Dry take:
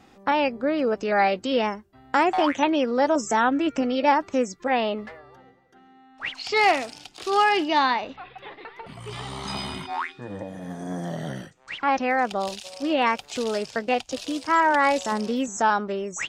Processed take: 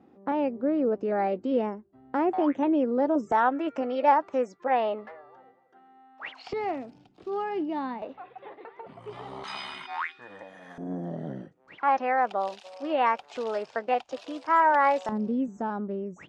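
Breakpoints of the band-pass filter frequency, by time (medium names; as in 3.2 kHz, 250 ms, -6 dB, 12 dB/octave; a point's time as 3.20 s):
band-pass filter, Q 0.94
310 Hz
from 3.32 s 760 Hz
from 6.53 s 180 Hz
from 8.02 s 530 Hz
from 9.44 s 1.8 kHz
from 10.78 s 310 Hz
from 11.78 s 850 Hz
from 15.09 s 200 Hz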